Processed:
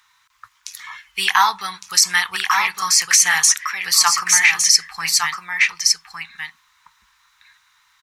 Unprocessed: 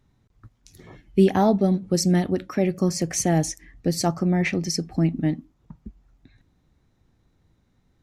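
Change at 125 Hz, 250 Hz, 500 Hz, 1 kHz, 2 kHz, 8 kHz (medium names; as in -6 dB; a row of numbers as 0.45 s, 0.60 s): under -20 dB, under -25 dB, -21.5 dB, +10.0 dB, +18.5 dB, +16.5 dB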